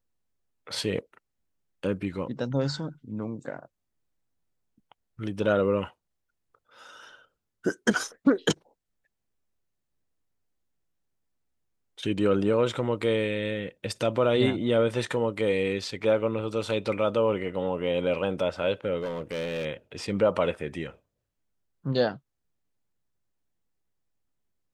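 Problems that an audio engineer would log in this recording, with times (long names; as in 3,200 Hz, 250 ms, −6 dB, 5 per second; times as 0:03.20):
0:19.00–0:19.66: clipping −27.5 dBFS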